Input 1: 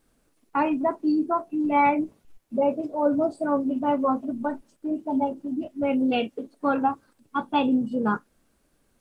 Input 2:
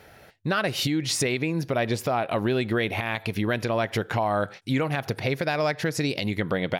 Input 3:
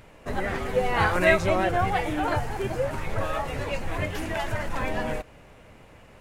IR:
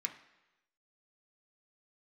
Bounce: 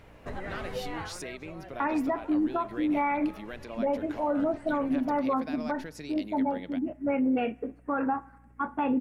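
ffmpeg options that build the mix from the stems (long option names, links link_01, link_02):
-filter_complex "[0:a]highshelf=frequency=2700:width_type=q:width=3:gain=-11.5,adelay=1250,volume=-2dB,asplit=2[link_01][link_02];[link_02]volume=-13.5dB[link_03];[1:a]highpass=frequency=160:width=0.5412,highpass=frequency=160:width=1.3066,volume=-15.5dB[link_04];[2:a]highshelf=frequency=6600:gain=-11,acompressor=threshold=-32dB:ratio=3,volume=-3dB,afade=type=out:start_time=0.89:duration=0.3:silence=0.281838[link_05];[3:a]atrim=start_sample=2205[link_06];[link_03][link_06]afir=irnorm=-1:irlink=0[link_07];[link_01][link_04][link_05][link_07]amix=inputs=4:normalize=0,aeval=exprs='val(0)+0.00158*(sin(2*PI*60*n/s)+sin(2*PI*2*60*n/s)/2+sin(2*PI*3*60*n/s)/3+sin(2*PI*4*60*n/s)/4+sin(2*PI*5*60*n/s)/5)':channel_layout=same,alimiter=limit=-19.5dB:level=0:latency=1:release=91"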